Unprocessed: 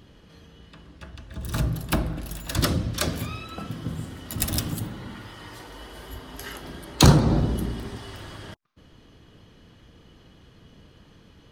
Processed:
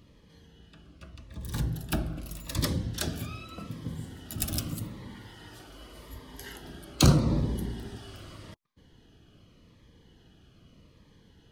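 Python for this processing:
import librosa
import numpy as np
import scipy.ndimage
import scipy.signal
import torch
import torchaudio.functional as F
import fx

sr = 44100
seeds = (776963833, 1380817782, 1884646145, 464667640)

y = fx.notch_cascade(x, sr, direction='falling', hz=0.83)
y = F.gain(torch.from_numpy(y), -5.0).numpy()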